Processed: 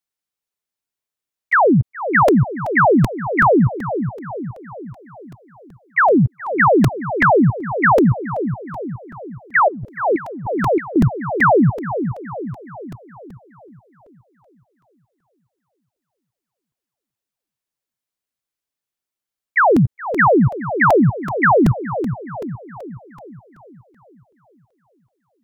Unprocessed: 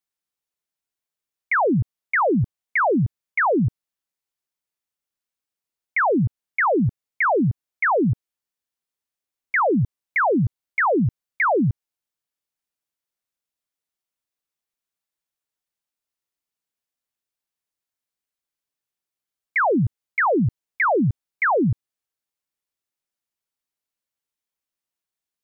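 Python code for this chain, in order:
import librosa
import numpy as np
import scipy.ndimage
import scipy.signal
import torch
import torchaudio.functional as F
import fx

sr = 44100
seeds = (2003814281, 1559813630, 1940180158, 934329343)

y = fx.level_steps(x, sr, step_db=19)
y = fx.echo_wet_lowpass(y, sr, ms=419, feedback_pct=52, hz=850.0, wet_db=-8.5)
y = fx.over_compress(y, sr, threshold_db=-27.0, ratio=-0.5, at=(9.68, 10.96))
y = fx.buffer_crackle(y, sr, first_s=0.76, period_s=0.38, block=128, kind='repeat')
y = F.gain(torch.from_numpy(y), 7.0).numpy()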